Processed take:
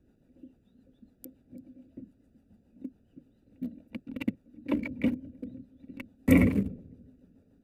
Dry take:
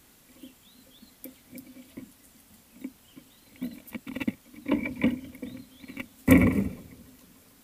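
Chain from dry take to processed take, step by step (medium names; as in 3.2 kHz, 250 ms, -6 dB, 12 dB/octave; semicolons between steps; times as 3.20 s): local Wiener filter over 41 samples; rotary cabinet horn 7 Hz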